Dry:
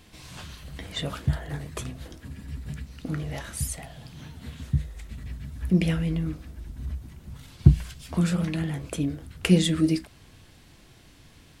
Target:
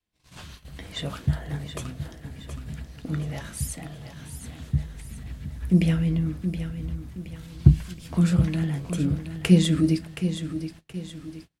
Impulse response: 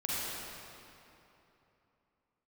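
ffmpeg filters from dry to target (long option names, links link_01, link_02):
-af "aecho=1:1:722|1444|2166|2888|3610:0.335|0.154|0.0709|0.0326|0.015,agate=range=-30dB:threshold=-42dB:ratio=16:detection=peak,adynamicequalizer=threshold=0.0224:dfrequency=160:dqfactor=0.95:tfrequency=160:tqfactor=0.95:attack=5:release=100:ratio=0.375:range=2.5:mode=boostabove:tftype=bell,volume=-1.5dB"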